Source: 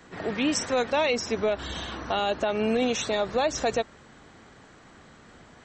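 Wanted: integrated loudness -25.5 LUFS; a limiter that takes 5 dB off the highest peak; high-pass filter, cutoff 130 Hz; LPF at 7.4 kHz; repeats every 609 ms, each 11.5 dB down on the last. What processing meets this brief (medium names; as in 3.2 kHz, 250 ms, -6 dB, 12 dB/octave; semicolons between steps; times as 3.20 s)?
high-pass 130 Hz; low-pass 7.4 kHz; peak limiter -19 dBFS; feedback delay 609 ms, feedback 27%, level -11.5 dB; trim +4 dB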